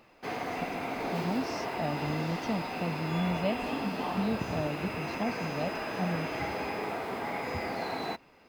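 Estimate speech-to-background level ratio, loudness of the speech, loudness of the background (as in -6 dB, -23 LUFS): -0.5 dB, -35.5 LUFS, -35.0 LUFS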